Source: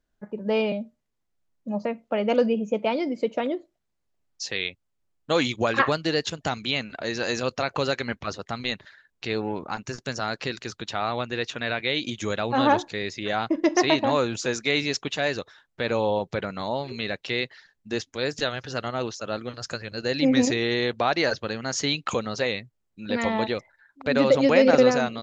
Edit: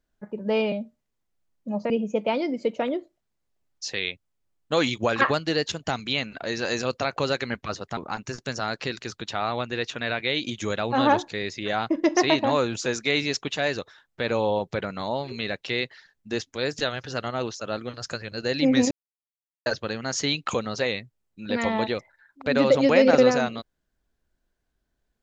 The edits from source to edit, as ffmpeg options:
ffmpeg -i in.wav -filter_complex "[0:a]asplit=5[link_01][link_02][link_03][link_04][link_05];[link_01]atrim=end=1.902[link_06];[link_02]atrim=start=2.478:end=8.552[link_07];[link_03]atrim=start=9.568:end=20.51,asetpts=PTS-STARTPTS,afade=type=out:start_time=10.938:duration=0.004:curve=hsin[link_08];[link_04]atrim=start=20.51:end=21.26,asetpts=PTS-STARTPTS,volume=0[link_09];[link_05]atrim=start=21.26,asetpts=PTS-STARTPTS,afade=type=in:duration=0.004:curve=hsin[link_10];[link_06][link_07]acrossfade=duration=0.004:curve1=hsin:curve2=hsin[link_11];[link_08][link_09][link_10]concat=n=3:v=0:a=1[link_12];[link_11][link_12]acrossfade=duration=0.004:curve1=hsin:curve2=hsin" out.wav

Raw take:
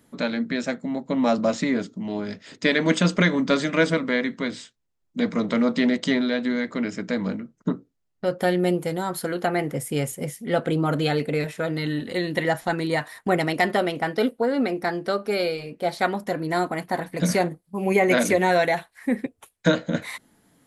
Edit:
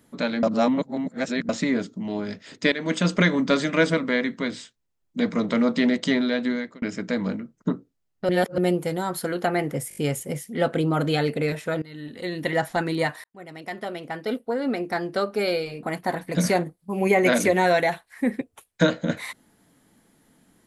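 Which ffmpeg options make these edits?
ffmpeg -i in.wav -filter_complex "[0:a]asplit=14[link_01][link_02][link_03][link_04][link_05][link_06][link_07][link_08][link_09][link_10][link_11][link_12][link_13][link_14];[link_01]atrim=end=0.432[link_15];[link_02]atrim=start=0.428:end=1.492,asetpts=PTS-STARTPTS,areverse[link_16];[link_03]atrim=start=1.488:end=2.72,asetpts=PTS-STARTPTS,afade=type=out:start_time=1.228:duration=0.004:curve=hsin:silence=0.251189[link_17];[link_04]atrim=start=2.72:end=6.82,asetpts=PTS-STARTPTS,afade=type=in:duration=0.45:silence=0.251189,afade=type=out:start_time=3.77:duration=0.33[link_18];[link_05]atrim=start=6.82:end=8.292,asetpts=PTS-STARTPTS,afade=type=in:duration=0.004:curve=hsin[link_19];[link_06]atrim=start=8.288:end=8.582,asetpts=PTS-STARTPTS,areverse[link_20];[link_07]atrim=start=8.578:end=9.912[link_21];[link_08]atrim=start=9.888:end=9.912[link_22];[link_09]atrim=start=9.888:end=9.912[link_23];[link_10]atrim=start=9.888:end=9.912[link_24];[link_11]atrim=start=9.888:end=11.74,asetpts=PTS-STARTPTS,afade=type=out:start_time=1.848:duration=0.004:curve=hsin:silence=0.0841395[link_25];[link_12]atrim=start=11.74:end=13.16,asetpts=PTS-STARTPTS,afade=type=in:duration=0.82:silence=0.0841395,afade=type=out:start_time=1.416:duration=0.004:curve=hsin[link_26];[link_13]atrim=start=13.16:end=15.752,asetpts=PTS-STARTPTS,afade=type=in:duration=1.97[link_27];[link_14]atrim=start=16.678[link_28];[link_15][link_16]acrossfade=duration=0.004:curve1=hsin:curve2=hsin[link_29];[link_17][link_18][link_19]concat=n=3:v=0:a=1[link_30];[link_29][link_30]acrossfade=duration=0.004:curve1=hsin:curve2=hsin[link_31];[link_31][link_20]acrossfade=duration=0.004:curve1=hsin:curve2=hsin[link_32];[link_32][link_21]acrossfade=duration=0.004:curve1=hsin:curve2=hsin[link_33];[link_33][link_22]acrossfade=duration=0.004:curve1=hsin:curve2=hsin[link_34];[link_34][link_23]acrossfade=duration=0.004:curve1=hsin:curve2=hsin[link_35];[link_35][link_24]acrossfade=duration=0.004:curve1=hsin:curve2=hsin[link_36];[link_25][link_26][link_27]concat=n=3:v=0:a=1[link_37];[link_36][link_37]acrossfade=duration=0.004:curve1=hsin:curve2=hsin[link_38];[link_38][link_28]acrossfade=duration=0.004:curve1=hsin:curve2=hsin" out.wav

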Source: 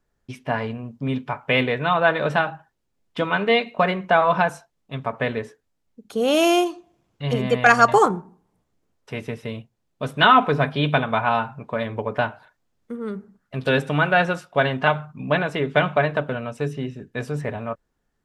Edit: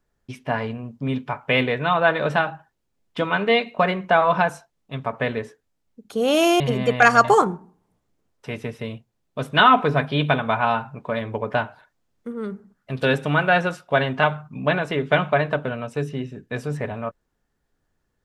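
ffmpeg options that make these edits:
ffmpeg -i in.wav -filter_complex "[0:a]asplit=2[link_01][link_02];[link_01]atrim=end=6.602[link_03];[link_02]atrim=start=7.238[link_04];[link_03][link_04]acrossfade=duration=0.004:curve1=hsin:curve2=hsin" out.wav

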